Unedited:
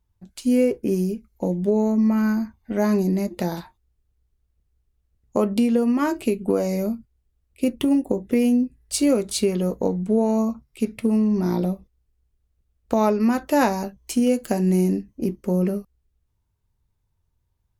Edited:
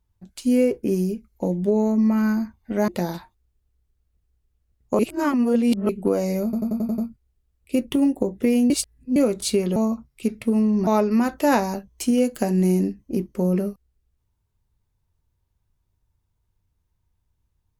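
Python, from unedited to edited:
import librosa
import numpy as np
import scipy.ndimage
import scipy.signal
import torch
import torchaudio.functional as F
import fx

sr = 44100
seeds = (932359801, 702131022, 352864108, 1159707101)

y = fx.edit(x, sr, fx.cut(start_s=2.88, length_s=0.43),
    fx.reverse_span(start_s=5.42, length_s=0.9),
    fx.stutter(start_s=6.87, slice_s=0.09, count=7),
    fx.reverse_span(start_s=8.59, length_s=0.46),
    fx.cut(start_s=9.65, length_s=0.68),
    fx.cut(start_s=11.44, length_s=1.52), tone=tone)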